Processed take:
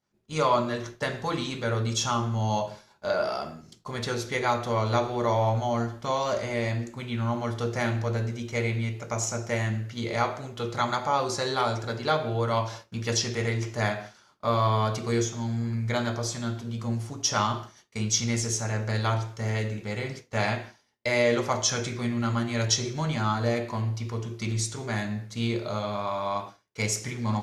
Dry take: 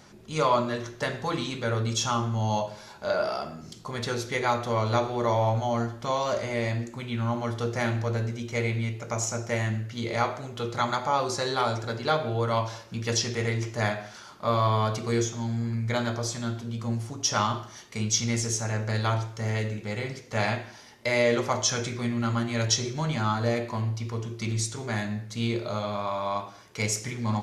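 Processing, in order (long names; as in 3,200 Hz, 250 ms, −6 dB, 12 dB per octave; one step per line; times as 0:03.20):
downward expander −36 dBFS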